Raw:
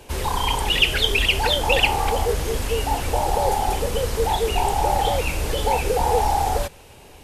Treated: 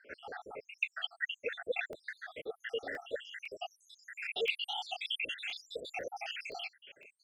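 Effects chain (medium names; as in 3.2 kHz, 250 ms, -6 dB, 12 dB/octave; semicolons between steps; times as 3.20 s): random holes in the spectrogram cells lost 82%; high-pass 630 Hz 12 dB/octave; low-pass sweep 1.4 kHz -> 3.1 kHz, 1.46–4.87 s; Butterworth band-stop 1 kHz, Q 1; crackling interface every 0.51 s, samples 64, zero, from 0.91 s; warped record 45 rpm, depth 100 cents; trim -3 dB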